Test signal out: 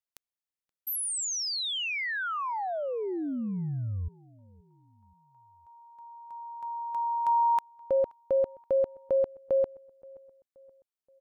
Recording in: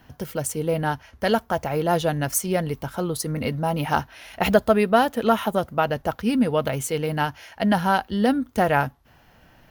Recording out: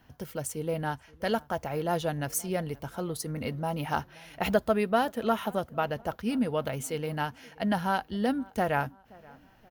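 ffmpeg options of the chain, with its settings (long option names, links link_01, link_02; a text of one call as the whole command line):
ffmpeg -i in.wav -filter_complex "[0:a]asplit=2[link_01][link_02];[link_02]adelay=526,lowpass=frequency=2200:poles=1,volume=-24dB,asplit=2[link_03][link_04];[link_04]adelay=526,lowpass=frequency=2200:poles=1,volume=0.48,asplit=2[link_05][link_06];[link_06]adelay=526,lowpass=frequency=2200:poles=1,volume=0.48[link_07];[link_01][link_03][link_05][link_07]amix=inputs=4:normalize=0,volume=-7.5dB" out.wav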